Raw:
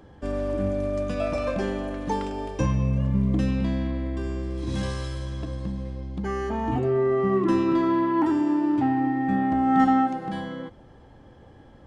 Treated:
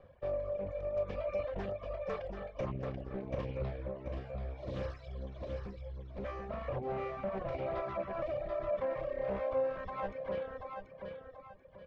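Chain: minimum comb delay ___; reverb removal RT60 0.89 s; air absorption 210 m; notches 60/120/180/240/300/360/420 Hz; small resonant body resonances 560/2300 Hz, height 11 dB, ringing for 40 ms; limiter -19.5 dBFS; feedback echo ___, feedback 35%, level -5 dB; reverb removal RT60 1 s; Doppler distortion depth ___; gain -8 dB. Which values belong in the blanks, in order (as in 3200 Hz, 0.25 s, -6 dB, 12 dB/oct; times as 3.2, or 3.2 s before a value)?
1.7 ms, 0.734 s, 0.46 ms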